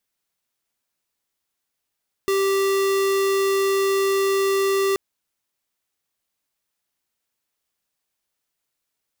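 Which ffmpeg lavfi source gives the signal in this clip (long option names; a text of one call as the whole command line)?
ffmpeg -f lavfi -i "aevalsrc='0.1*(2*lt(mod(391*t,1),0.5)-1)':duration=2.68:sample_rate=44100" out.wav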